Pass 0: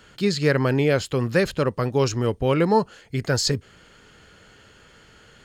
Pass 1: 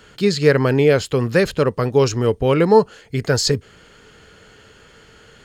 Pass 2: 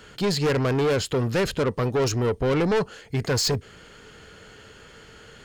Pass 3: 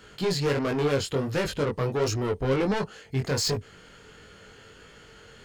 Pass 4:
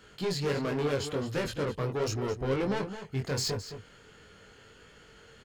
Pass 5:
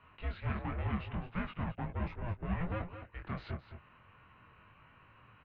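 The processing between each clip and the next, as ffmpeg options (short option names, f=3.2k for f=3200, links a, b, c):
-af "equalizer=f=440:w=7.8:g=6,volume=3.5dB"
-af "asoftclip=type=tanh:threshold=-19dB"
-af "flanger=delay=19:depth=3.5:speed=1.4"
-filter_complex "[0:a]asplit=2[a][b];[b]adelay=215.7,volume=-10dB,highshelf=f=4k:g=-4.85[c];[a][c]amix=inputs=2:normalize=0,volume=-5dB"
-af "highpass=f=350:t=q:w=0.5412,highpass=f=350:t=q:w=1.307,lowpass=f=3k:t=q:w=0.5176,lowpass=f=3k:t=q:w=0.7071,lowpass=f=3k:t=q:w=1.932,afreqshift=-340,volume=-3.5dB"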